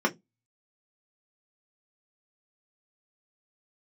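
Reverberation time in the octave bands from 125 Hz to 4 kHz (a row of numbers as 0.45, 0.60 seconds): 0.30, 0.25, 0.20, 0.15, 0.10, 0.15 seconds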